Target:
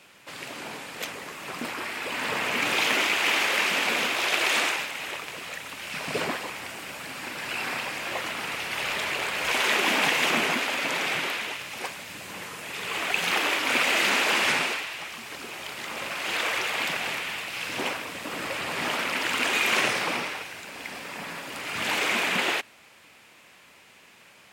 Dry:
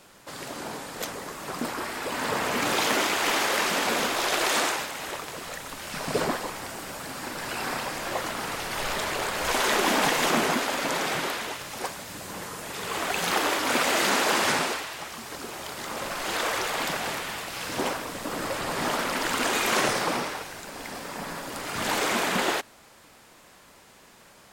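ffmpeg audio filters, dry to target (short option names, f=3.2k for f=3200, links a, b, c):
-af "highpass=75,equalizer=f=2.5k:w=1.5:g=11,volume=-4dB"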